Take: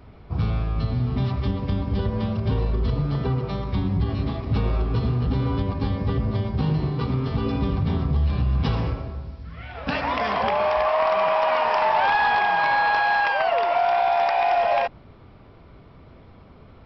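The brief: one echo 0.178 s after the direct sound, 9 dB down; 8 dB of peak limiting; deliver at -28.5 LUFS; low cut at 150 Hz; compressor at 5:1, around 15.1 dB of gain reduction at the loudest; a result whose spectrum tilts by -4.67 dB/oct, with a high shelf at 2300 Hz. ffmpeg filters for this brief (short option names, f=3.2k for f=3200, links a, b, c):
-af "highpass=150,highshelf=f=2.3k:g=6,acompressor=threshold=-34dB:ratio=5,alimiter=level_in=4dB:limit=-24dB:level=0:latency=1,volume=-4dB,aecho=1:1:178:0.355,volume=8dB"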